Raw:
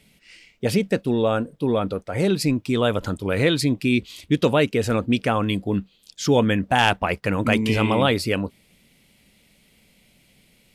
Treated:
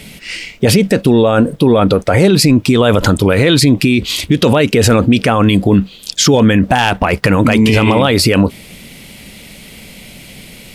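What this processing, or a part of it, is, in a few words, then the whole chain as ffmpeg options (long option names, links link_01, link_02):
loud club master: -af "acompressor=threshold=-21dB:ratio=2.5,asoftclip=type=hard:threshold=-12.5dB,alimiter=level_in=24dB:limit=-1dB:release=50:level=0:latency=1,volume=-1dB"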